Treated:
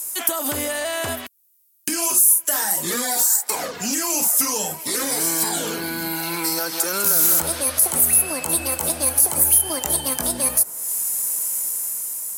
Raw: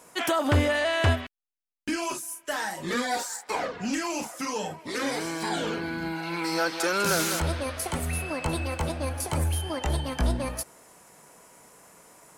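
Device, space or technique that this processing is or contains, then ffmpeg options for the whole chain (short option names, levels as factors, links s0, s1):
FM broadcast chain: -filter_complex "[0:a]highpass=80,dynaudnorm=f=190:g=9:m=2,acrossover=split=210|1500[s0][s1][s2];[s0]acompressor=threshold=0.0141:ratio=4[s3];[s1]acompressor=threshold=0.0631:ratio=4[s4];[s2]acompressor=threshold=0.00891:ratio=4[s5];[s3][s4][s5]amix=inputs=3:normalize=0,aemphasis=mode=production:type=75fm,alimiter=limit=0.141:level=0:latency=1:release=55,asoftclip=type=hard:threshold=0.106,lowpass=f=15000:w=0.5412,lowpass=f=15000:w=1.3066,aemphasis=mode=production:type=75fm"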